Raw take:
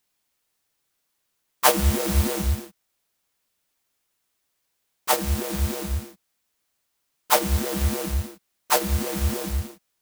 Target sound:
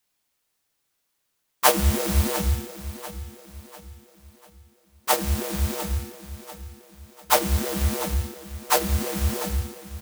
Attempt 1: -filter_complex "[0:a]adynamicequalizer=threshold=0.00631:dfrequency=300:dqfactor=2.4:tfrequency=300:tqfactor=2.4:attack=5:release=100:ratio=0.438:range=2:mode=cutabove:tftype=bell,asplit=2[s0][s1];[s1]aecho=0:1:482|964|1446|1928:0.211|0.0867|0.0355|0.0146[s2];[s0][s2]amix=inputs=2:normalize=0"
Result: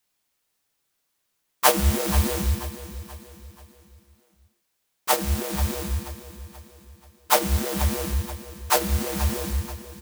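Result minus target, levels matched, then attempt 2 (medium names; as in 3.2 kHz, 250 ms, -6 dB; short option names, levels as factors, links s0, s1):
echo 213 ms early
-filter_complex "[0:a]adynamicequalizer=threshold=0.00631:dfrequency=300:dqfactor=2.4:tfrequency=300:tqfactor=2.4:attack=5:release=100:ratio=0.438:range=2:mode=cutabove:tftype=bell,asplit=2[s0][s1];[s1]aecho=0:1:695|1390|2085|2780:0.211|0.0867|0.0355|0.0146[s2];[s0][s2]amix=inputs=2:normalize=0"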